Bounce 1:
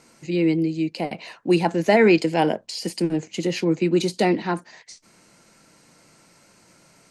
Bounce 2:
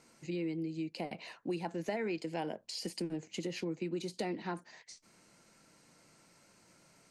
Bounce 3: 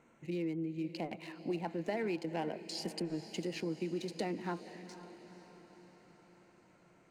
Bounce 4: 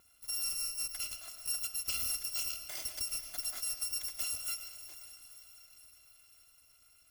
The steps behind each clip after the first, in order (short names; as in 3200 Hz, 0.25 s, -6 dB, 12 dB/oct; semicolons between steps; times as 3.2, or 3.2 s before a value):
compressor 4:1, threshold -26 dBFS, peak gain reduction 12.5 dB; gain -9 dB
Wiener smoothing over 9 samples; diffused feedback echo 0.483 s, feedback 56%, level -13 dB
FFT order left unsorted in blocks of 256 samples; on a send at -8.5 dB: reverb RT60 0.70 s, pre-delay 75 ms